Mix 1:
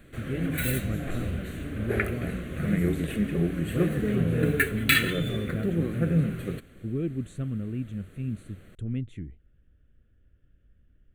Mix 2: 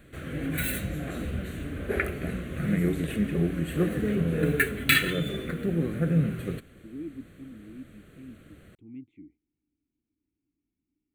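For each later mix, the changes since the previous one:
speech: add vowel filter u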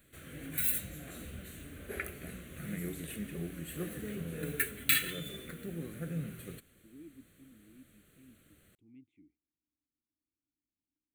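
master: add pre-emphasis filter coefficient 0.8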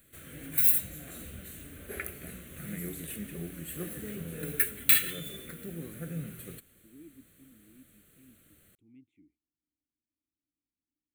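master: add treble shelf 9.9 kHz +10.5 dB

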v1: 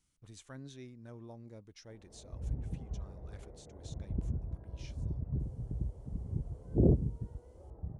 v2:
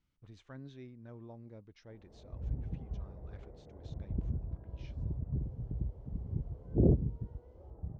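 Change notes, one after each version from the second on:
master: add distance through air 230 m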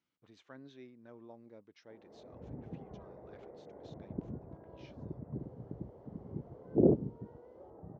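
background +6.0 dB; master: add band-pass 260–7300 Hz

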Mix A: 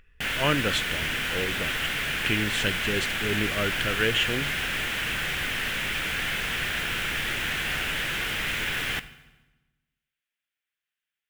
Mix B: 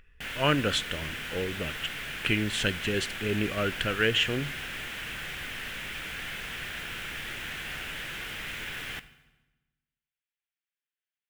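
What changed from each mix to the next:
background -8.5 dB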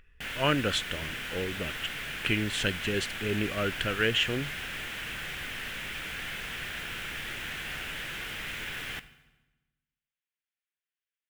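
speech: send off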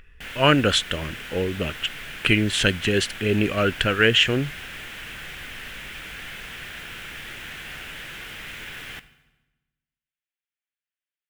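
speech +9.0 dB

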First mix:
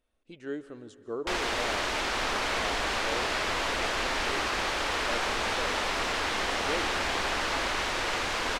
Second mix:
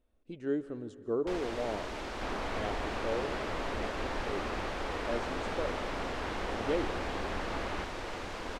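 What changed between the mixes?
first sound -9.0 dB; master: add tilt shelf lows +6 dB, about 810 Hz

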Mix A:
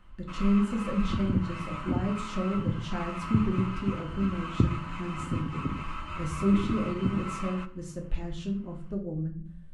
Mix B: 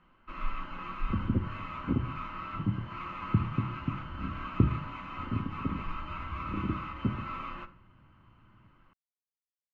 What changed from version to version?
speech: muted; master: add distance through air 200 m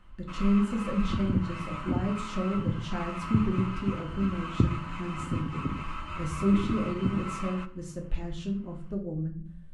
speech: unmuted; master: remove distance through air 200 m

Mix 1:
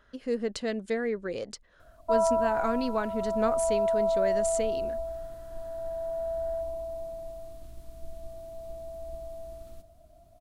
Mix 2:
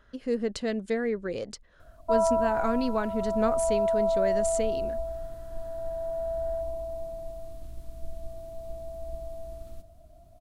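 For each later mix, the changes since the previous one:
master: add bass shelf 240 Hz +5 dB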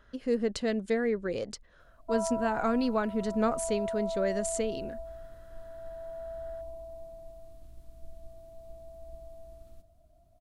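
background -9.0 dB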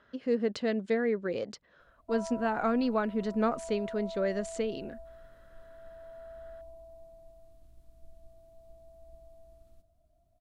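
speech: add band-pass 130–4500 Hz; background -7.0 dB

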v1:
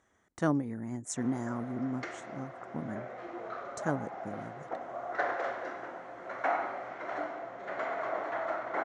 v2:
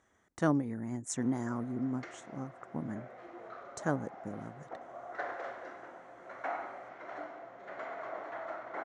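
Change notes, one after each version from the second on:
background -7.0 dB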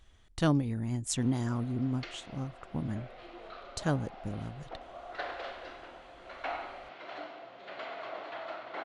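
speech: remove band-pass 200–7300 Hz; master: add high-order bell 3.5 kHz +14.5 dB 1.2 oct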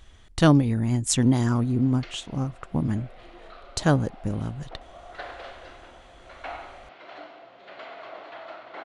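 speech +9.5 dB

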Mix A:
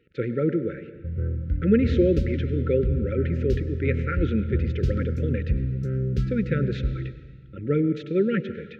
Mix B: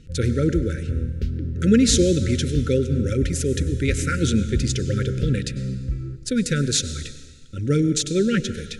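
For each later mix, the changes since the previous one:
speech: remove cabinet simulation 180–2200 Hz, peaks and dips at 260 Hz -6 dB, 1.1 kHz +7 dB, 1.5 kHz -8 dB; background: entry -0.95 s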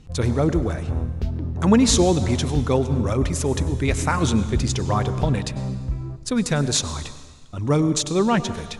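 master: remove brick-wall FIR band-stop 570–1300 Hz

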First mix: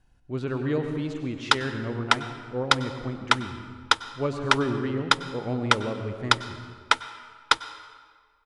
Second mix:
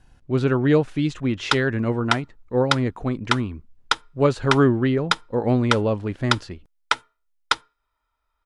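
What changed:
speech +11.0 dB; reverb: off

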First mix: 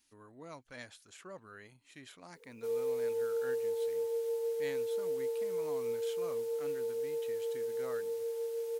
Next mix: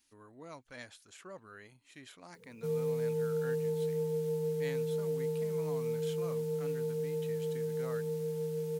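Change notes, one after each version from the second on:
background: remove brick-wall FIR high-pass 370 Hz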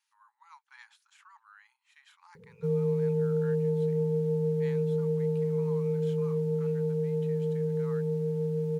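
speech: add brick-wall FIR high-pass 800 Hz; master: add tilt EQ -3.5 dB/octave

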